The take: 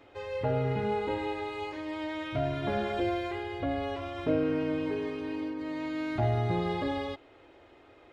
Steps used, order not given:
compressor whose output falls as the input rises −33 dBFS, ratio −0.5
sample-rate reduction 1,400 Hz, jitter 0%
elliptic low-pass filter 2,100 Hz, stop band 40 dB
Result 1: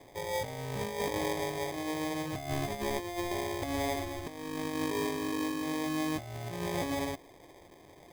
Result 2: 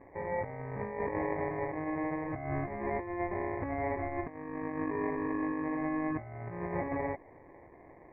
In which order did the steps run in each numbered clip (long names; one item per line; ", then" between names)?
elliptic low-pass filter, then sample-rate reduction, then compressor whose output falls as the input rises
sample-rate reduction, then compressor whose output falls as the input rises, then elliptic low-pass filter